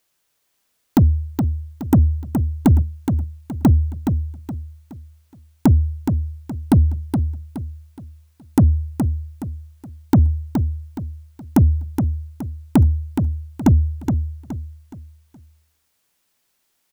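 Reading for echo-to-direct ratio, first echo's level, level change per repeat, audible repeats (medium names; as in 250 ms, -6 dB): -6.0 dB, -6.5 dB, -9.0 dB, 4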